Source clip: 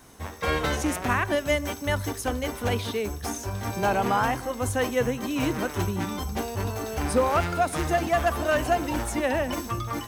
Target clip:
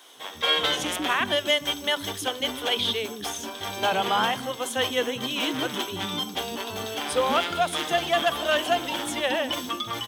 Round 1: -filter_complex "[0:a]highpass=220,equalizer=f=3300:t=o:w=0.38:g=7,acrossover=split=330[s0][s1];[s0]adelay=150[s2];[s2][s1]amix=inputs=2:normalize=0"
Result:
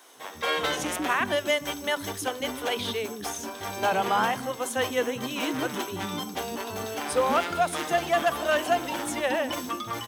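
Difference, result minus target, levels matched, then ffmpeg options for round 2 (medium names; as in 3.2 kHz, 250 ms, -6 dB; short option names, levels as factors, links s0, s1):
4 kHz band -6.0 dB
-filter_complex "[0:a]highpass=220,equalizer=f=3300:t=o:w=0.38:g=18.5,acrossover=split=330[s0][s1];[s0]adelay=150[s2];[s2][s1]amix=inputs=2:normalize=0"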